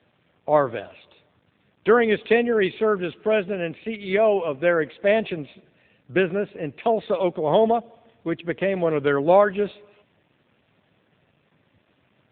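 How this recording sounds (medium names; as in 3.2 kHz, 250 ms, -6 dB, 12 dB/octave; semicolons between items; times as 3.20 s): a quantiser's noise floor 10-bit, dither none; AMR-NB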